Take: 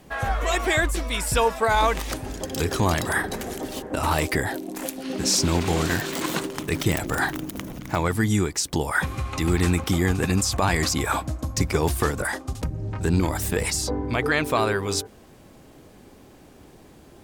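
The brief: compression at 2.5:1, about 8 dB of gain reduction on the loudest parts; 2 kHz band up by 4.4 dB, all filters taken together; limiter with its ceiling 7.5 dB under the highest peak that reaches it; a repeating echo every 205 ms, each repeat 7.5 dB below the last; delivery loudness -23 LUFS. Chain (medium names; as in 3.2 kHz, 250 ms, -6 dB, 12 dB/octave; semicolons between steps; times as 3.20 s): peaking EQ 2 kHz +5.5 dB; compression 2.5:1, threshold -28 dBFS; peak limiter -20 dBFS; feedback delay 205 ms, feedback 42%, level -7.5 dB; trim +7 dB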